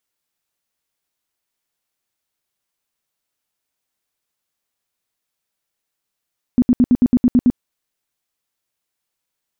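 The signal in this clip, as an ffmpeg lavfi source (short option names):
-f lavfi -i "aevalsrc='0.398*sin(2*PI*247*mod(t,0.11))*lt(mod(t,0.11),10/247)':d=0.99:s=44100"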